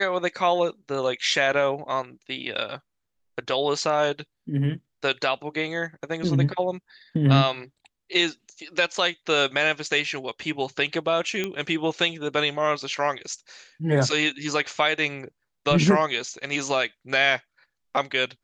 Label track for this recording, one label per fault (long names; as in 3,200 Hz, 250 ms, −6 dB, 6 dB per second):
11.440000	11.440000	click −13 dBFS